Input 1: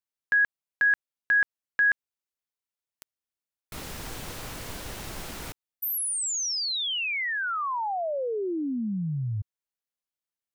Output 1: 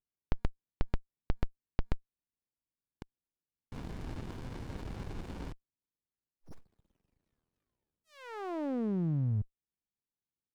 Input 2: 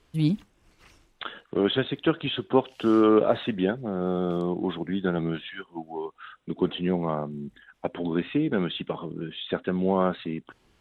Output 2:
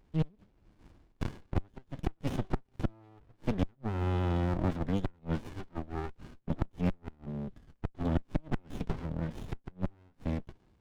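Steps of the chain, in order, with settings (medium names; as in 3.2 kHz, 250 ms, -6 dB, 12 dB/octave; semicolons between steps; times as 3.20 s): inverted gate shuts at -15 dBFS, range -35 dB; resampled via 11.025 kHz; sliding maximum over 65 samples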